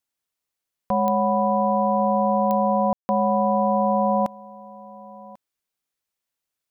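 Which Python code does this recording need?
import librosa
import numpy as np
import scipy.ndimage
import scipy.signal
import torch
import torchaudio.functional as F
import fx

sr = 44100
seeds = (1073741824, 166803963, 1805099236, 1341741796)

y = fx.fix_declick_ar(x, sr, threshold=10.0)
y = fx.fix_ambience(y, sr, seeds[0], print_start_s=0.31, print_end_s=0.81, start_s=2.93, end_s=3.09)
y = fx.fix_echo_inverse(y, sr, delay_ms=1093, level_db=-21.0)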